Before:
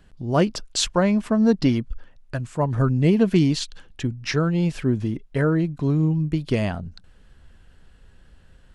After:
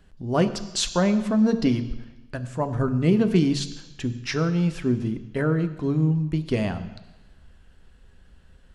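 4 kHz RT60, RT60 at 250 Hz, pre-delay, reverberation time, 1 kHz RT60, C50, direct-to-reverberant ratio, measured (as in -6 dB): 1.1 s, 1.0 s, 3 ms, 1.1 s, 1.2 s, 13.0 dB, 9.5 dB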